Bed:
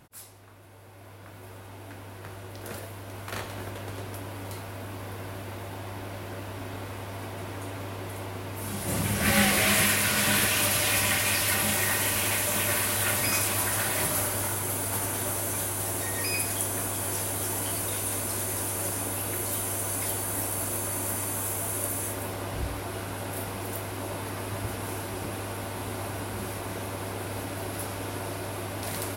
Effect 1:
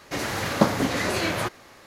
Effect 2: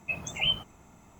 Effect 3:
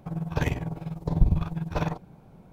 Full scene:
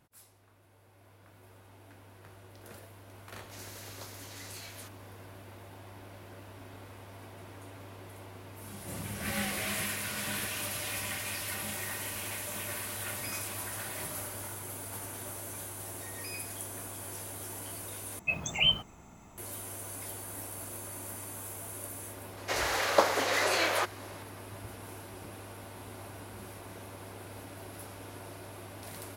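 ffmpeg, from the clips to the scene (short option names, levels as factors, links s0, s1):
-filter_complex "[1:a]asplit=2[s0][s1];[0:a]volume=0.266[s2];[s0]aderivative[s3];[2:a]acontrast=55[s4];[s1]highpass=f=420:w=0.5412,highpass=f=420:w=1.3066[s5];[s2]asplit=2[s6][s7];[s6]atrim=end=18.194[s8];[s4]atrim=end=1.19,asetpts=PTS-STARTPTS,volume=0.596[s9];[s7]atrim=start=19.376[s10];[s3]atrim=end=1.86,asetpts=PTS-STARTPTS,volume=0.266,afade=t=in:d=0.004:c=hsin,afade=t=out:st=1.856:d=0.004:c=hsin,adelay=3400[s11];[s5]atrim=end=1.86,asetpts=PTS-STARTPTS,volume=0.891,afade=t=in:d=0.004:c=hsin,afade=t=out:st=1.856:d=0.004:c=hsin,adelay=22370[s12];[s8][s9]acrossfade=d=0.004:c1=hsin:c2=hsin[s13];[s13][s10]acrossfade=d=0.004:c1=hsin:c2=hsin[s14];[s14][s11][s12]amix=inputs=3:normalize=0"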